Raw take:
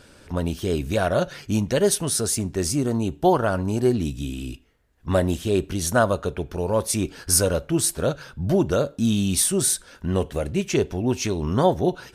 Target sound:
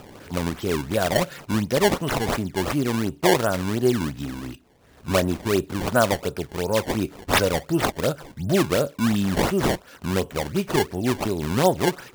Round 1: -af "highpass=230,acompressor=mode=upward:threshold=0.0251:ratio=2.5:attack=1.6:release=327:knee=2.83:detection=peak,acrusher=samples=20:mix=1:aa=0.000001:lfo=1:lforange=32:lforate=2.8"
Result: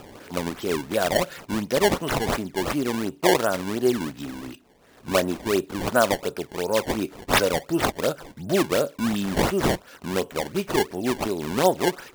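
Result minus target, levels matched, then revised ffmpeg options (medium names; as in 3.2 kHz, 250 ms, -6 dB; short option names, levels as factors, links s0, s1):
125 Hz band -5.0 dB
-af "highpass=100,acompressor=mode=upward:threshold=0.0251:ratio=2.5:attack=1.6:release=327:knee=2.83:detection=peak,acrusher=samples=20:mix=1:aa=0.000001:lfo=1:lforange=32:lforate=2.8"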